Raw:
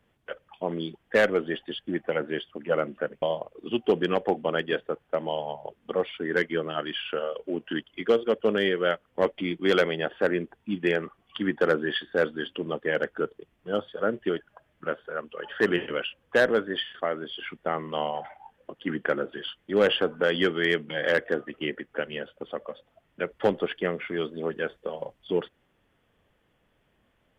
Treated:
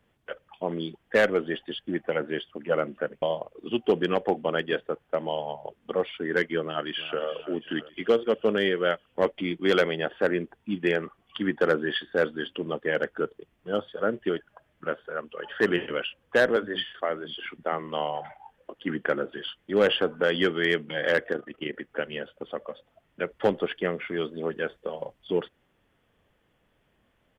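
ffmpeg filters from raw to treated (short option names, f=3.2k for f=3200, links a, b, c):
-filter_complex "[0:a]asplit=2[a][b];[b]afade=t=in:st=6.63:d=0.01,afade=t=out:st=7.21:d=0.01,aecho=0:1:340|680|1020|1360|1700|2040:0.211349|0.126809|0.0760856|0.0456514|0.0273908|0.0164345[c];[a][c]amix=inputs=2:normalize=0,asettb=1/sr,asplit=3[d][e][f];[d]atrim=end=16.564[g];[e]atrim=start=16.56:end=18.75,asetpts=PTS-STARTPTS,afade=t=in:d=0.004:c=qsin,afade=t=out:st=2.186:d=0.004:c=qsin,acrossover=split=220[h][i];[h]adelay=60[j];[j][i]amix=inputs=2:normalize=0,atrim=end_sample=96579[k];[f]atrim=start=18.746[l];[g][k]acrossfade=d=0.004:c1=hsin:c2=qsin[m];[m][l]acrossfade=d=0.004:c1=qsin:c2=hsin,asettb=1/sr,asplit=3[n][o][p];[n]atrim=end=21.324[q];[o]atrim=start=21.32:end=21.74,asetpts=PTS-STARTPTS,afade=t=in:d=0.004:c=qsin,afade=t=out:st=0.416:d=0.004:c=qsin,tremolo=f=26:d=0.621[r];[p]atrim=start=21.736[s];[q][r]acrossfade=d=0.004:c1=hsin:c2=qsin[t];[t][s]acrossfade=d=0.004:c1=qsin:c2=hsin"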